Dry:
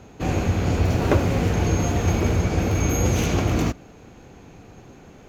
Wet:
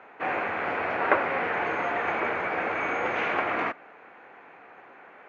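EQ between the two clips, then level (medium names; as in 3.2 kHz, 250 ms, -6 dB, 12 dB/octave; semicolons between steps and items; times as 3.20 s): high-pass 930 Hz 12 dB/octave; Chebyshev low-pass 2 kHz, order 3; +8.0 dB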